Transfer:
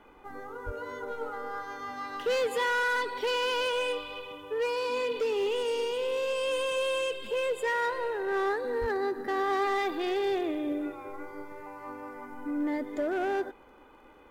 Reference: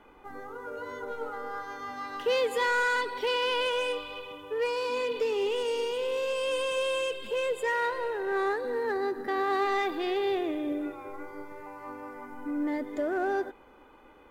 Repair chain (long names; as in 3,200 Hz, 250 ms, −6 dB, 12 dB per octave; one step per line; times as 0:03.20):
clipped peaks rebuilt −24 dBFS
click removal
0:00.65–0:00.77: high-pass filter 140 Hz 24 dB per octave
0:08.80–0:08.92: high-pass filter 140 Hz 24 dB per octave